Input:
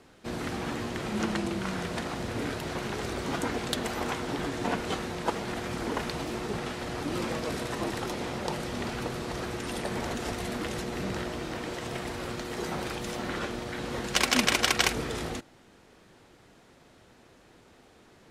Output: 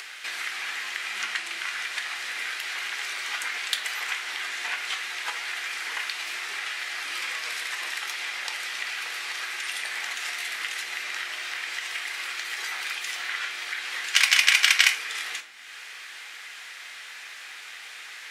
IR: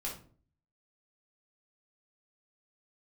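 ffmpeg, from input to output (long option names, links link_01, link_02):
-filter_complex "[0:a]highpass=frequency=2000:width_type=q:width=2,asplit=2[link_01][link_02];[1:a]atrim=start_sample=2205[link_03];[link_02][link_03]afir=irnorm=-1:irlink=0,volume=-2.5dB[link_04];[link_01][link_04]amix=inputs=2:normalize=0,acompressor=mode=upward:threshold=-27dB:ratio=2.5"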